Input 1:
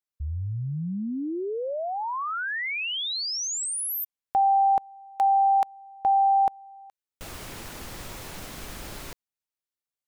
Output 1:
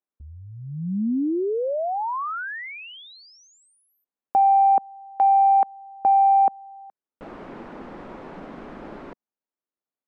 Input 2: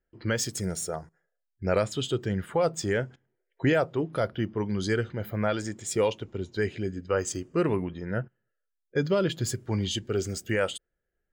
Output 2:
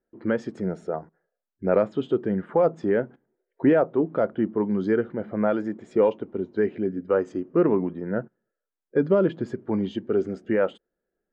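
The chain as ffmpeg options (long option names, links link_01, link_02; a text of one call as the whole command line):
ffmpeg -i in.wav -af "lowpass=1200,lowshelf=frequency=150:width_type=q:width=1.5:gain=-12.5,acontrast=38,volume=-1dB" out.wav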